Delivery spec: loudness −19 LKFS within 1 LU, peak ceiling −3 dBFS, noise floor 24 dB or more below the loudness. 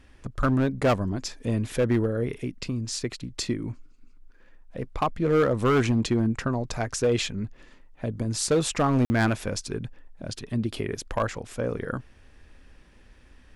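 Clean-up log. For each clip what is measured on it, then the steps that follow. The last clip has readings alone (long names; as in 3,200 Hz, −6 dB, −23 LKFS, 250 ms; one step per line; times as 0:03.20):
share of clipped samples 1.5%; peaks flattened at −16.5 dBFS; number of dropouts 1; longest dropout 50 ms; integrated loudness −27.0 LKFS; sample peak −16.5 dBFS; target loudness −19.0 LKFS
→ clipped peaks rebuilt −16.5 dBFS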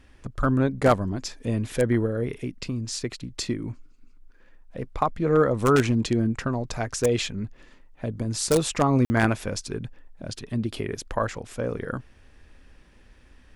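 share of clipped samples 0.0%; number of dropouts 1; longest dropout 50 ms
→ repair the gap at 0:09.05, 50 ms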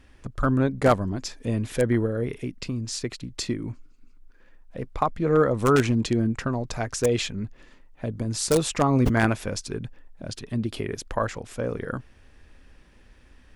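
number of dropouts 0; integrated loudness −25.5 LKFS; sample peak −7.5 dBFS; target loudness −19.0 LKFS
→ level +6.5 dB
brickwall limiter −3 dBFS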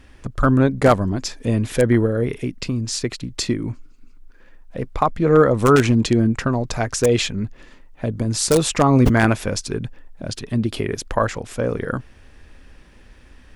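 integrated loudness −19.5 LKFS; sample peak −3.0 dBFS; background noise floor −47 dBFS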